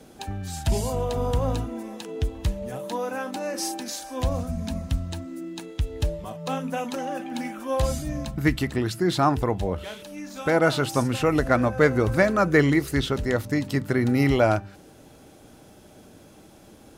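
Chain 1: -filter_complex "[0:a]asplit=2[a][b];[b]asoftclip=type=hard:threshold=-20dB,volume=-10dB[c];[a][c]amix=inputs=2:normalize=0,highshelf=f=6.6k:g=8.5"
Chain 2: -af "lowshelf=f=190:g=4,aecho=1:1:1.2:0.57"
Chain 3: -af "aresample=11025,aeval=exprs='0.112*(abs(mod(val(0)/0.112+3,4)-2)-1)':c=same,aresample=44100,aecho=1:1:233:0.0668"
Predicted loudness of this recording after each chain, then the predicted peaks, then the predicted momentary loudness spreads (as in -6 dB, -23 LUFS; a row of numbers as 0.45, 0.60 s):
-23.5, -23.0, -28.5 LUFS; -3.5, -3.5, -15.5 dBFS; 12, 12, 10 LU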